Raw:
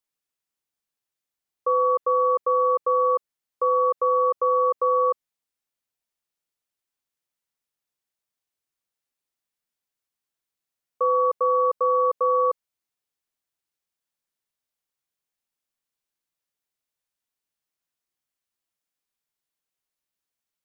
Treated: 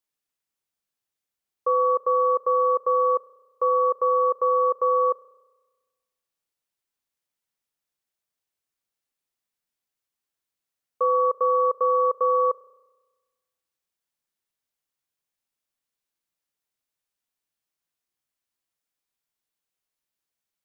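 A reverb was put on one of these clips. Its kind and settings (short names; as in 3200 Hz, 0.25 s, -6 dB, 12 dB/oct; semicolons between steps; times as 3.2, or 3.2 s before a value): spring tank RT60 1.3 s, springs 31 ms, DRR 17.5 dB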